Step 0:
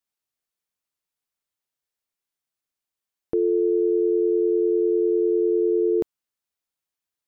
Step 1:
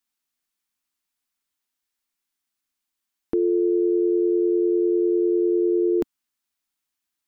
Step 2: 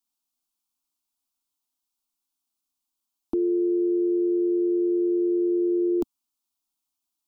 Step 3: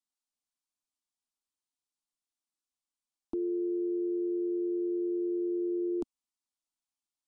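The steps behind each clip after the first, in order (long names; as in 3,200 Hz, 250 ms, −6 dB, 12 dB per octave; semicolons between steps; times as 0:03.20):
octave-band graphic EQ 125/250/500 Hz −12/+6/−10 dB; level +5 dB
phaser with its sweep stopped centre 490 Hz, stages 6
downsampling to 22,050 Hz; level −8.5 dB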